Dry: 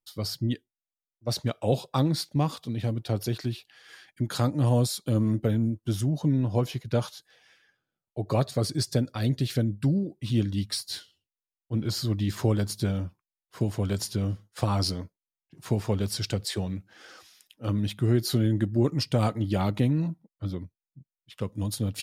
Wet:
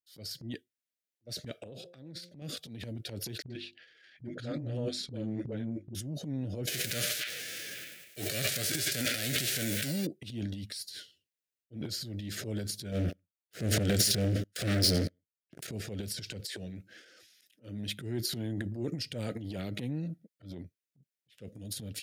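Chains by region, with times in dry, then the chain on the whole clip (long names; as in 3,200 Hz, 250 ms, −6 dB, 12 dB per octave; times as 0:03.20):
0:01.61–0:02.42: high-shelf EQ 5,600 Hz −11.5 dB + hum removal 175 Hz, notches 5 + downward compressor 16 to 1, threshold −31 dBFS
0:03.42–0:05.95: low-pass filter 4,000 Hz + mains-hum notches 50/100/150/200/250/300/350 Hz + all-pass dispersion highs, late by 80 ms, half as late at 350 Hz
0:06.67–0:10.05: spectral envelope flattened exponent 0.3 + feedback echo with a band-pass in the loop 100 ms, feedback 62%, band-pass 2,300 Hz, level −20 dB + envelope flattener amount 70%
0:12.92–0:15.67: repeating echo 88 ms, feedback 30%, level −22.5 dB + leveller curve on the samples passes 5
whole clip: Chebyshev band-stop filter 580–1,600 Hz, order 2; transient designer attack −9 dB, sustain +11 dB; high-pass filter 130 Hz 6 dB per octave; level −8.5 dB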